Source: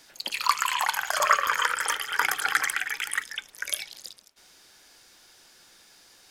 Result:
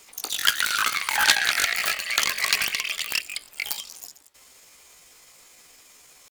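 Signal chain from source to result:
phase distortion by the signal itself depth 0.34 ms
pitch shifter +6 semitones
level +4 dB

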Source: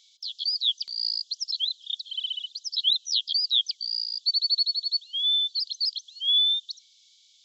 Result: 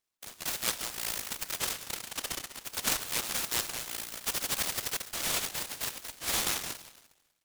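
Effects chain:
delay that plays each chunk backwards 153 ms, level −7 dB
noise reduction from a noise print of the clip's start 20 dB
speech leveller within 3 dB 2 s
dense smooth reverb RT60 2.1 s, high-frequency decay 0.55×, DRR 7.5 dB
short delay modulated by noise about 3,200 Hz, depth 0.1 ms
level −8 dB

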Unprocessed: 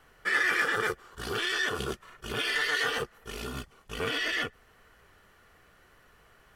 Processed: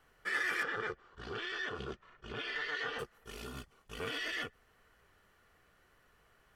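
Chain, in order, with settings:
0:00.63–0:02.99: high-frequency loss of the air 160 metres
level −8 dB

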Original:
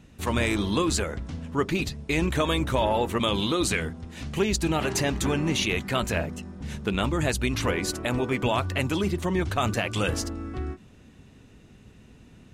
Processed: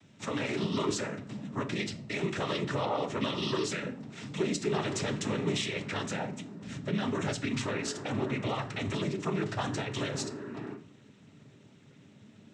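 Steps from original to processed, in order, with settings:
brickwall limiter −18.5 dBFS, peak gain reduction 6 dB
cochlear-implant simulation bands 12
on a send: convolution reverb RT60 0.50 s, pre-delay 4 ms, DRR 8 dB
on the sum: level −4 dB

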